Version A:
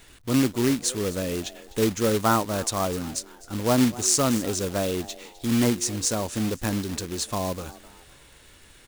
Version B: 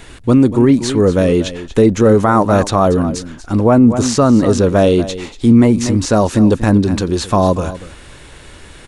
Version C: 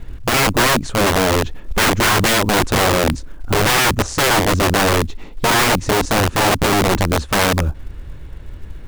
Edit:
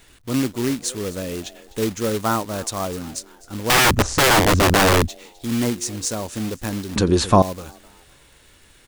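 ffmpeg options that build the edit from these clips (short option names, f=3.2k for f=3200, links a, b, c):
-filter_complex "[0:a]asplit=3[a][b][c];[a]atrim=end=3.702[d];[2:a]atrim=start=3.698:end=5.082[e];[b]atrim=start=5.078:end=6.962[f];[1:a]atrim=start=6.958:end=7.422[g];[c]atrim=start=7.418[h];[d][e]acrossfade=d=0.004:c1=hsin:c2=hsin[i];[i][f]acrossfade=d=0.004:c1=hsin:c2=hsin[j];[j][g]acrossfade=d=0.004:c1=hsin:c2=hsin[k];[k][h]acrossfade=d=0.004:c1=hsin:c2=hsin"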